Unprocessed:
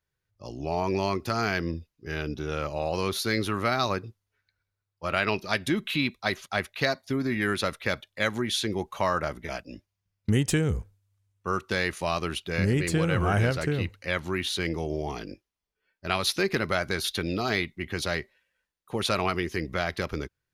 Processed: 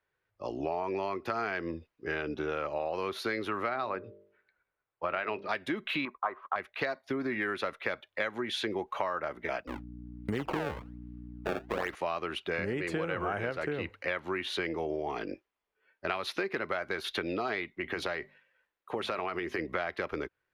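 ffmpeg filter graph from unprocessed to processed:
-filter_complex "[0:a]asettb=1/sr,asplit=3[s0][s1][s2];[s0]atrim=end=3.694[s3];[s1]atrim=start=3.69:end=5.49,asetpts=PTS-STARTPTS,afade=t=in:d=0.004:c=qsin,afade=t=out:st=1.796:d=0.004:c=qsin,lowpass=f=5000:w=0.5412,lowpass=f=5000:w=1.3066,aemphasis=mode=reproduction:type=50fm,bandreject=f=49.67:t=h:w=4,bandreject=f=99.34:t=h:w=4,bandreject=f=149.01:t=h:w=4,bandreject=f=198.68:t=h:w=4,bandreject=f=248.35:t=h:w=4,bandreject=f=298.02:t=h:w=4,bandreject=f=347.69:t=h:w=4,bandreject=f=397.36:t=h:w=4,bandreject=f=447.03:t=h:w=4,bandreject=f=496.7:t=h:w=4,bandreject=f=546.37:t=h:w=4,bandreject=f=596.04:t=h:w=4[s4];[s2]atrim=start=5.486[s5];[s3][s4]acrossfade=d=0.004:c1=hsin:c2=qsin[s6];[s6][s5]acrossfade=d=0.004:c1=qsin:c2=hsin,asettb=1/sr,asplit=3[s7][s8][s9];[s7]atrim=end=6.054[s10];[s8]atrim=start=6.05:end=6.56,asetpts=PTS-STARTPTS,afade=t=in:d=0.004:c=qsin,afade=t=out:st=0.506:d=0.004:c=qsin,agate=range=0.316:threshold=0.00178:ratio=16:release=100:detection=peak,lowpass=f=1100:t=q:w=7.5,equalizer=f=130:t=o:w=1.7:g=-11.5[s11];[s9]atrim=start=6.556[s12];[s10][s11]acrossfade=d=0.004:c1=hsin:c2=qsin[s13];[s13][s12]acrossfade=d=0.004:c1=qsin:c2=hsin,asettb=1/sr,asplit=3[s14][s15][s16];[s14]atrim=end=9.674[s17];[s15]atrim=start=9.67:end=11.95,asetpts=PTS-STARTPTS,afade=t=in:d=0.004:c=qsin,afade=t=out:st=2.276:d=0.004:c=qsin,acrusher=samples=25:mix=1:aa=0.000001:lfo=1:lforange=40:lforate=1.2,aeval=exprs='val(0)+0.0126*(sin(2*PI*60*n/s)+sin(2*PI*2*60*n/s)/2+sin(2*PI*3*60*n/s)/3+sin(2*PI*4*60*n/s)/4+sin(2*PI*5*60*n/s)/5)':c=same[s18];[s16]atrim=start=11.946[s19];[s17][s18]acrossfade=d=0.004:c1=hsin:c2=qsin[s20];[s20][s19]acrossfade=d=0.004:c1=qsin:c2=hsin,asettb=1/sr,asplit=3[s21][s22][s23];[s21]atrim=end=17.714[s24];[s22]atrim=start=17.71:end=19.59,asetpts=PTS-STARTPTS,afade=t=in:d=0.004:c=qsin,afade=t=out:st=1.876:d=0.004:c=qsin,acompressor=threshold=0.0398:ratio=6:attack=3.2:release=140:knee=1:detection=peak,bandreject=f=50:t=h:w=6,bandreject=f=100:t=h:w=6,bandreject=f=150:t=h:w=6,bandreject=f=200:t=h:w=6,bandreject=f=250:t=h:w=6[s25];[s23]atrim=start=19.586[s26];[s24][s25]acrossfade=d=0.004:c1=hsin:c2=qsin[s27];[s27][s26]acrossfade=d=0.004:c1=qsin:c2=hsin,acrossover=split=290 2900:gain=0.178 1 0.126[s28][s29][s30];[s28][s29][s30]amix=inputs=3:normalize=0,acompressor=threshold=0.0141:ratio=6,volume=2.24"

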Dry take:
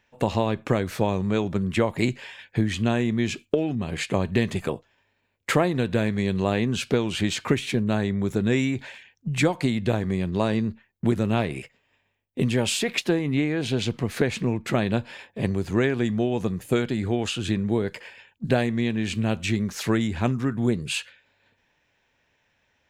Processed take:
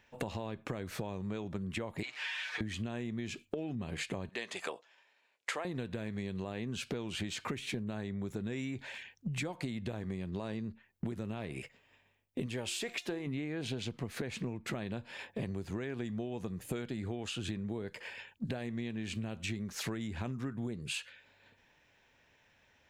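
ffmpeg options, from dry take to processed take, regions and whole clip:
-filter_complex "[0:a]asettb=1/sr,asplit=3[s0][s1][s2];[s0]atrim=end=2.034[s3];[s1]atrim=start=2.03:end=2.61,asetpts=PTS-STARTPTS,afade=t=in:d=0.004:c=qsin,afade=t=out:st=0.576:d=0.004:c=qsin,aeval=exprs='val(0)+0.5*0.015*sgn(val(0))':c=same,asuperpass=centerf=2300:order=4:qfactor=0.56,aecho=1:1:6.6:0.75,atrim=end_sample=25578[s4];[s2]atrim=start=2.606[s5];[s3][s4]acrossfade=d=0.004:c1=hsin:c2=qsin[s6];[s6][s5]acrossfade=d=0.004:c1=qsin:c2=hsin,asettb=1/sr,asplit=3[s7][s8][s9];[s7]atrim=end=4.294[s10];[s8]atrim=start=4.29:end=5.65,asetpts=PTS-STARTPTS,afade=t=in:d=0.004:c=qsin,afade=t=out:st=1.356:d=0.004:c=qsin,highpass=610,lowpass=7400,highshelf=f=5300:g=5.5[s11];[s9]atrim=start=5.646[s12];[s10][s11]acrossfade=d=0.004:c1=hsin:c2=qsin[s13];[s13][s12]acrossfade=d=0.004:c1=qsin:c2=hsin,asettb=1/sr,asplit=3[s14][s15][s16];[s14]atrim=end=12.464[s17];[s15]atrim=start=12.46:end=13.27,asetpts=PTS-STARTPTS,afade=t=in:d=0.004:c=qsin,afade=t=out:st=0.806:d=0.004:c=qsin,equalizer=f=180:t=o:w=1.1:g=-7,bandreject=f=353:t=h:w=4,bandreject=f=706:t=h:w=4,bandreject=f=1059:t=h:w=4,bandreject=f=1412:t=h:w=4,bandreject=f=1765:t=h:w=4,bandreject=f=2118:t=h:w=4,bandreject=f=2471:t=h:w=4,bandreject=f=2824:t=h:w=4,bandreject=f=3177:t=h:w=4,bandreject=f=3530:t=h:w=4,bandreject=f=3883:t=h:w=4,bandreject=f=4236:t=h:w=4,bandreject=f=4589:t=h:w=4,bandreject=f=4942:t=h:w=4,bandreject=f=5295:t=h:w=4,bandreject=f=5648:t=h:w=4,bandreject=f=6001:t=h:w=4,bandreject=f=6354:t=h:w=4,bandreject=f=6707:t=h:w=4,bandreject=f=7060:t=h:w=4,bandreject=f=7413:t=h:w=4,bandreject=f=7766:t=h:w=4,bandreject=f=8119:t=h:w=4[s18];[s16]atrim=start=13.266[s19];[s17][s18]acrossfade=d=0.004:c1=hsin:c2=qsin[s20];[s20][s19]acrossfade=d=0.004:c1=qsin:c2=hsin,alimiter=limit=0.224:level=0:latency=1,acompressor=threshold=0.0158:ratio=8,volume=1.12"

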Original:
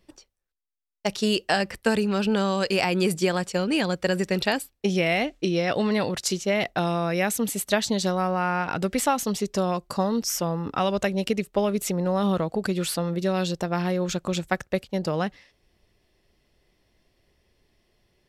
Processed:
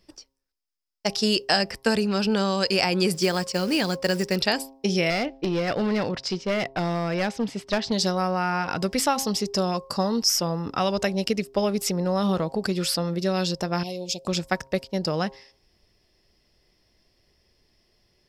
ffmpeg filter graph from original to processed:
-filter_complex "[0:a]asettb=1/sr,asplit=3[s0][s1][s2];[s0]atrim=end=3.134[s3];[s1]atrim=start=3.13:end=4.36,asetpts=PTS-STARTPTS,afade=t=in:d=0.004:c=qsin,afade=t=out:st=1.226:d=0.004:c=qsin,equalizer=f=82:w=1.8:g=-2.5,acrusher=bits=5:mode=log:mix=0:aa=0.000001[s4];[s2]atrim=start=4.356[s5];[s3][s4]acrossfade=d=0.004:c1=hsin:c2=qsin[s6];[s6][s5]acrossfade=d=0.004:c1=qsin:c2=hsin,asettb=1/sr,asplit=3[s7][s8][s9];[s7]atrim=end=5.104[s10];[s8]atrim=start=5.1:end=7.92,asetpts=PTS-STARTPTS,afade=t=in:d=0.004:c=qsin,afade=t=out:st=2.816:d=0.004:c=qsin,lowpass=3000,aeval=exprs='clip(val(0),-1,0.0794)':c=same[s11];[s9]atrim=start=7.916[s12];[s10][s11]acrossfade=d=0.004:c1=hsin:c2=qsin[s13];[s13][s12]acrossfade=d=0.004:c1=qsin:c2=hsin,asettb=1/sr,asplit=3[s14][s15][s16];[s14]atrim=end=13.834[s17];[s15]atrim=start=13.83:end=14.27,asetpts=PTS-STARTPTS,afade=t=in:d=0.004:c=qsin,afade=t=out:st=0.436:d=0.004:c=qsin,asuperstop=centerf=1400:order=8:qfactor=0.85,lowshelf=f=490:g=-12[s18];[s16]atrim=start=14.266[s19];[s17][s18]acrossfade=d=0.004:c1=hsin:c2=qsin[s20];[s20][s19]acrossfade=d=0.004:c1=qsin:c2=hsin,equalizer=f=5100:w=4.9:g=13.5,bandreject=f=134.4:t=h:w=4,bandreject=f=268.8:t=h:w=4,bandreject=f=403.2:t=h:w=4,bandreject=f=537.6:t=h:w=4,bandreject=f=672:t=h:w=4,bandreject=f=806.4:t=h:w=4,bandreject=f=940.8:t=h:w=4,bandreject=f=1075.2:t=h:w=4"

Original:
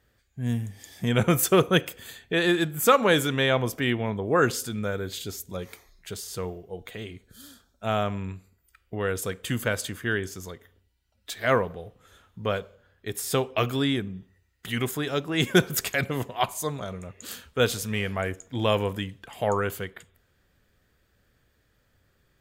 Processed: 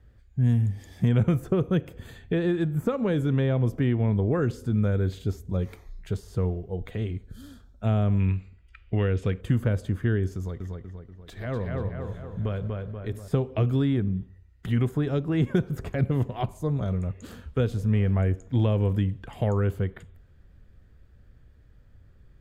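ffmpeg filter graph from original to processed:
-filter_complex "[0:a]asettb=1/sr,asplit=3[s0][s1][s2];[s0]atrim=end=8.204[s3];[s1]atrim=start=8.2:end=9.41,asetpts=PTS-STARTPTS,afade=t=in:d=0.004:c=qsin,afade=t=out:st=1.206:d=0.004:c=qsin,lowpass=6400,equalizer=f=2600:t=o:w=1.2:g=14[s4];[s2]atrim=start=9.406[s5];[s3][s4]acrossfade=d=0.004:c1=hsin:c2=qsin[s6];[s6][s5]acrossfade=d=0.004:c1=qsin:c2=hsin,asettb=1/sr,asplit=3[s7][s8][s9];[s7]atrim=end=10.364[s10];[s8]atrim=start=10.36:end=13.28,asetpts=PTS-STARTPTS,afade=t=in:d=0.004:c=qsin,afade=t=out:st=2.916:d=0.004:c=qsin,acompressor=threshold=0.0141:ratio=2:attack=3.2:release=140:knee=1:detection=peak,asplit=2[s11][s12];[s12]adelay=241,lowpass=f=2800:p=1,volume=0.708,asplit=2[s13][s14];[s14]adelay=241,lowpass=f=2800:p=1,volume=0.53,asplit=2[s15][s16];[s16]adelay=241,lowpass=f=2800:p=1,volume=0.53,asplit=2[s17][s18];[s18]adelay=241,lowpass=f=2800:p=1,volume=0.53,asplit=2[s19][s20];[s20]adelay=241,lowpass=f=2800:p=1,volume=0.53,asplit=2[s21][s22];[s22]adelay=241,lowpass=f=2800:p=1,volume=0.53,asplit=2[s23][s24];[s24]adelay=241,lowpass=f=2800:p=1,volume=0.53[s25];[s11][s13][s15][s17][s19][s21][s23][s25]amix=inputs=8:normalize=0,atrim=end_sample=128772[s26];[s9]atrim=start=13.276[s27];[s10][s26]acrossfade=d=0.004:c1=hsin:c2=qsin[s28];[s28][s27]acrossfade=d=0.004:c1=qsin:c2=hsin,highshelf=f=9600:g=12,acrossover=split=580|1500[s29][s30][s31];[s29]acompressor=threshold=0.0355:ratio=4[s32];[s30]acompressor=threshold=0.00794:ratio=4[s33];[s31]acompressor=threshold=0.01:ratio=4[s34];[s32][s33][s34]amix=inputs=3:normalize=0,aemphasis=mode=reproduction:type=riaa"

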